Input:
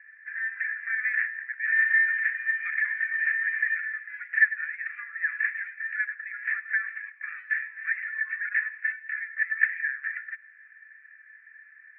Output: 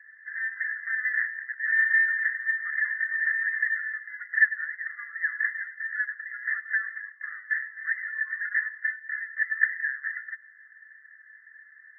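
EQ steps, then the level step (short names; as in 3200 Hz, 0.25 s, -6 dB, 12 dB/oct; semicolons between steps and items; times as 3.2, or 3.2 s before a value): brick-wall FIR band-pass 1000–2100 Hz; 0.0 dB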